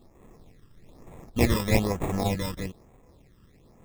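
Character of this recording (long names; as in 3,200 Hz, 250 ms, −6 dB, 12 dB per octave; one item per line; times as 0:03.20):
aliases and images of a low sample rate 1,500 Hz, jitter 0%
phaser sweep stages 12, 1.1 Hz, lowest notch 700–4,800 Hz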